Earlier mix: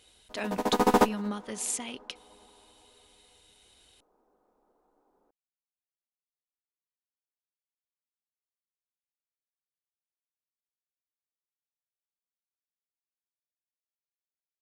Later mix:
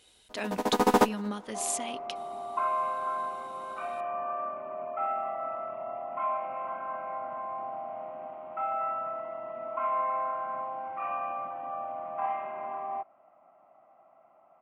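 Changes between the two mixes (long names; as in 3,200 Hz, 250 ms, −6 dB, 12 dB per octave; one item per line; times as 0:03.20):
second sound: unmuted
master: add low-shelf EQ 90 Hz −6 dB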